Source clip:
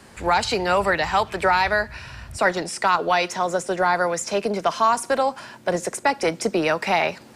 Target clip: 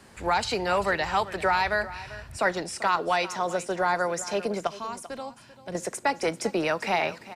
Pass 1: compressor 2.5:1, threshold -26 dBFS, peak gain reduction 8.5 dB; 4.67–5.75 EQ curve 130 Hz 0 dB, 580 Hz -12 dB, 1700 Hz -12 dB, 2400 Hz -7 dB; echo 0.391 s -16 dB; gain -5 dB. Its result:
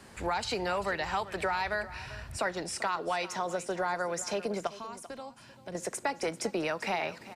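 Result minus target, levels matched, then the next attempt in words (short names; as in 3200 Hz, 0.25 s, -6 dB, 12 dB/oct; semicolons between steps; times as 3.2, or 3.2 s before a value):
compressor: peak gain reduction +8.5 dB
4.67–5.75 EQ curve 130 Hz 0 dB, 580 Hz -12 dB, 1700 Hz -12 dB, 2400 Hz -7 dB; echo 0.391 s -16 dB; gain -5 dB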